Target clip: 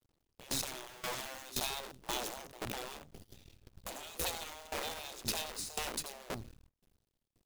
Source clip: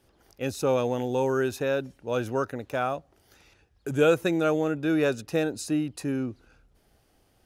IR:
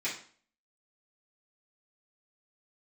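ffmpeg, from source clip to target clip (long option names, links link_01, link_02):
-filter_complex "[0:a]alimiter=limit=-20dB:level=0:latency=1:release=11,asettb=1/sr,asplit=3[link_01][link_02][link_03];[link_01]atrim=end=2.434[link_04];[link_02]atrim=start=2.43:end=2.89,asetpts=PTS-STARTPTS,afade=type=in:duration=0.004:curve=qsin,afade=type=out:start_time=0.456:duration=0.004:curve=qsin,highshelf=frequency=2600:gain=-10[link_05];[link_03]atrim=start=2.886[link_06];[link_04][link_05]acrossfade=duration=0.004:curve1=hsin:curve2=qsin[link_07];[link_07][link_06]acrossfade=duration=0.004:curve1=qsin:curve2=hsin,dynaudnorm=framelen=330:gausssize=9:maxgain=8.5dB,firequalizer=gain_entry='entry(160,0);entry(1100,-26);entry(3400,-6);entry(5600,-10)':delay=0.05:min_phase=1,acrossover=split=140|3000[link_08][link_09][link_10];[link_09]acompressor=threshold=-38dB:ratio=5[link_11];[link_08][link_11][link_10]amix=inputs=3:normalize=0,asettb=1/sr,asplit=3[link_12][link_13][link_14];[link_12]atrim=end=0.894[link_15];[link_13]atrim=start=0.89:end=1.5,asetpts=PTS-STARTPTS,afade=type=in:duration=0.004:curve=qsin,afade=type=out:start_time=0.606:duration=0.004:curve=qsin,highpass=110[link_16];[link_14]atrim=start=1.496[link_17];[link_15][link_16]acrossfade=duration=0.004:curve1=hsin:curve2=qsin[link_18];[link_18][link_17]acrossfade=duration=0.004:curve1=qsin:curve2=hsin,asoftclip=type=hard:threshold=-32.5dB,aecho=1:1:85|170|255:0.251|0.0628|0.0157,acrusher=bits=8:dc=4:mix=0:aa=0.000001,agate=range=-18dB:threshold=-57dB:ratio=16:detection=peak,afftfilt=real='re*lt(hypot(re,im),0.0282)':imag='im*lt(hypot(re,im),0.0282)':win_size=1024:overlap=0.75,aeval=exprs='val(0)*pow(10,-20*if(lt(mod(1.9*n/s,1),2*abs(1.9)/1000),1-mod(1.9*n/s,1)/(2*abs(1.9)/1000),(mod(1.9*n/s,1)-2*abs(1.9)/1000)/(1-2*abs(1.9)/1000))/20)':channel_layout=same,volume=13.5dB"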